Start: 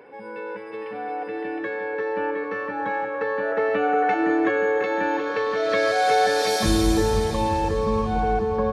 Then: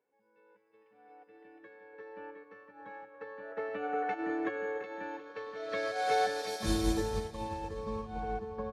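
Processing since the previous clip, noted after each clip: upward expander 2.5:1, over -35 dBFS; gain -8 dB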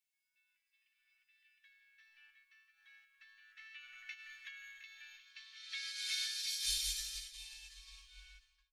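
ending faded out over 0.52 s; inverse Chebyshev band-stop 100–690 Hz, stop band 70 dB; gain +5.5 dB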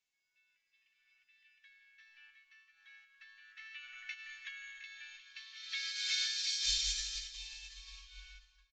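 reverb RT60 0.80 s, pre-delay 0.194 s, DRR 17 dB; downsampling 16000 Hz; gain +4 dB

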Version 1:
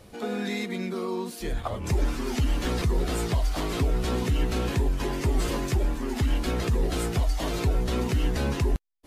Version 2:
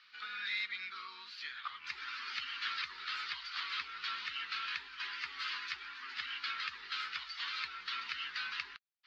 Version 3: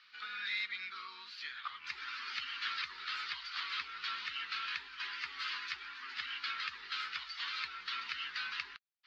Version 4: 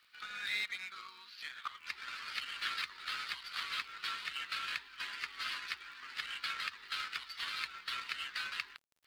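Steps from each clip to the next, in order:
elliptic band-pass 1300–4600 Hz, stop band 40 dB
nothing audible
G.711 law mismatch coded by A; crackle 30/s -55 dBFS; gain +3 dB

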